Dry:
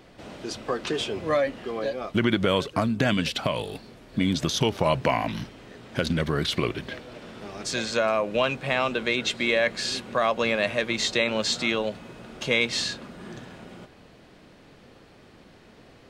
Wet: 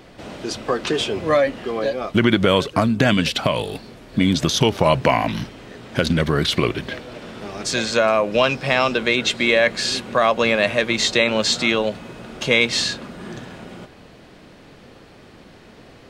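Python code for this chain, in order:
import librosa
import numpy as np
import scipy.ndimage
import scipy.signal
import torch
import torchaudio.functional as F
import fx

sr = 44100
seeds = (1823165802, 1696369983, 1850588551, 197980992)

y = fx.peak_eq(x, sr, hz=5200.0, db=14.5, octaves=0.23, at=(8.32, 8.98))
y = y * librosa.db_to_amplitude(6.5)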